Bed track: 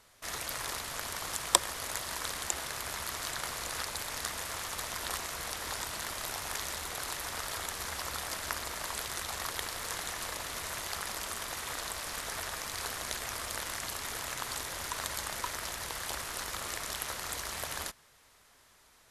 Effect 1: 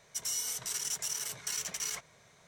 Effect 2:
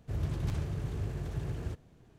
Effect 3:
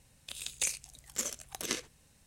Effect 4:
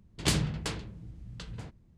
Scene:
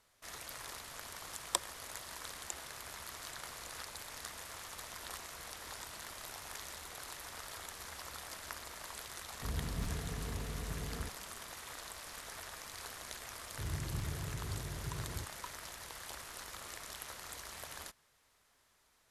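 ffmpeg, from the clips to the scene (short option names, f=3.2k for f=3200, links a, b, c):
-filter_complex "[2:a]asplit=2[a][b];[0:a]volume=-9.5dB[c];[a]aecho=1:1:4.3:0.65,atrim=end=2.18,asetpts=PTS-STARTPTS,volume=-4.5dB,afade=t=in:d=0.004:c=hsin,afade=t=out:st=2.176:d=0.004:c=hsin,adelay=9340[d];[b]atrim=end=2.18,asetpts=PTS-STARTPTS,volume=-6.5dB,afade=t=in:d=0.004:c=hsin,afade=t=out:st=2.176:d=0.004:c=hsin,adelay=13500[e];[c][d][e]amix=inputs=3:normalize=0"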